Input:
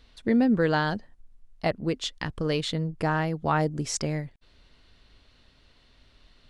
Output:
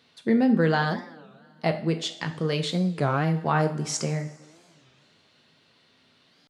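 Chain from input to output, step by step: HPF 130 Hz 24 dB/oct; two-slope reverb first 0.46 s, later 2.4 s, from -18 dB, DRR 5 dB; record warp 33 1/3 rpm, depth 250 cents

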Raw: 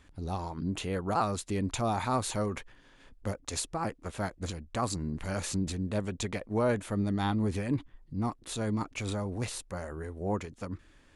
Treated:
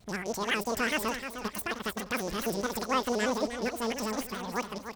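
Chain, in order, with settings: rattling part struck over -36 dBFS, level -30 dBFS; wide varispeed 2.25×; on a send: feedback echo 0.307 s, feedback 39%, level -9 dB; on the sum: shaped vibrato square 4.6 Hz, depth 100 cents

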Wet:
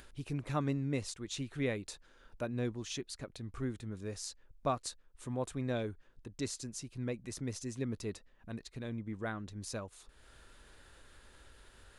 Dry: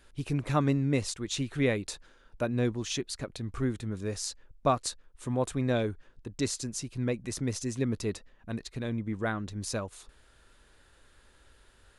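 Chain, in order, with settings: upward compressor, threshold -39 dBFS; gain -7.5 dB

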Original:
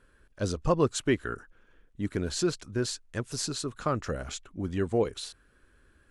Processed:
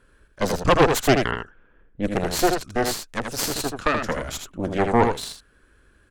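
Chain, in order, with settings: added harmonics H 6 -7 dB, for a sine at -11 dBFS; echo 80 ms -5.5 dB; 1.31–2.17 low-pass opened by the level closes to 1600 Hz, open at -24.5 dBFS; gain +4 dB

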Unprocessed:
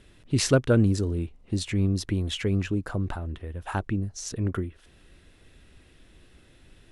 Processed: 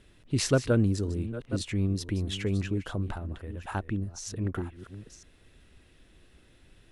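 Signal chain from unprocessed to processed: reverse delay 0.523 s, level -13 dB; gain -3.5 dB

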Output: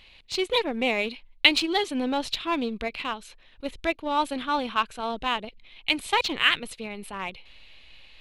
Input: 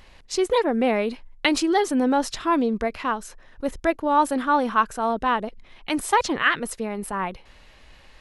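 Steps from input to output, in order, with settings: band shelf 3100 Hz +13.5 dB 1.2 oct; in parallel at -6 dB: backlash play -14.5 dBFS; on the sum: gain -8.5 dB

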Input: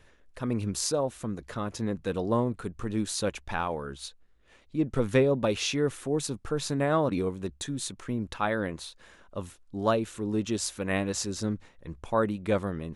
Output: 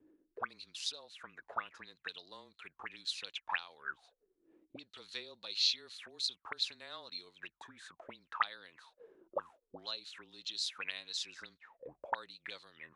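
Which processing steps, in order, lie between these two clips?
frequency shift -24 Hz; auto-wah 290–4200 Hz, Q 15, up, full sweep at -26 dBFS; gain +13 dB

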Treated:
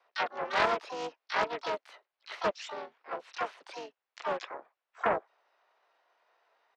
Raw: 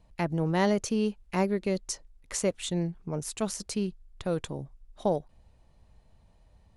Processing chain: mistuned SSB +61 Hz 530–2800 Hz; harmoniser -7 st -9 dB, +7 st -4 dB, +12 st -5 dB; Doppler distortion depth 0.28 ms

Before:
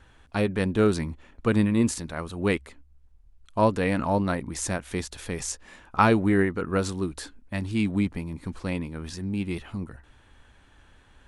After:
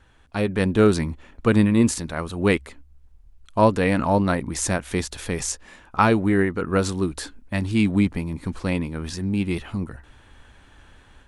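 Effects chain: AGC gain up to 7 dB; gain -1.5 dB

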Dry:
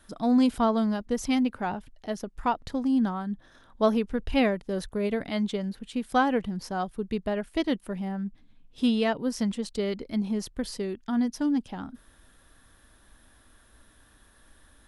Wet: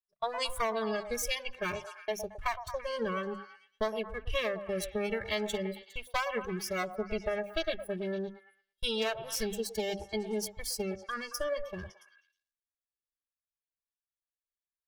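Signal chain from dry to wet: minimum comb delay 1.8 ms; spectral noise reduction 19 dB; notches 50/100/150/200/250 Hz; gate -46 dBFS, range -34 dB; tilt shelf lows -3.5 dB, about 1300 Hz; compressor 6:1, threshold -33 dBFS, peak gain reduction 13 dB; delay with a stepping band-pass 0.112 s, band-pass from 690 Hz, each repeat 0.7 oct, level -7.5 dB; gain +4 dB

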